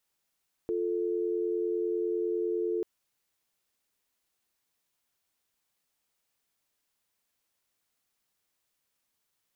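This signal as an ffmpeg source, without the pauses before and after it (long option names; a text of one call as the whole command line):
ffmpeg -f lavfi -i "aevalsrc='0.0316*(sin(2*PI*350*t)+sin(2*PI*440*t))':duration=2.14:sample_rate=44100" out.wav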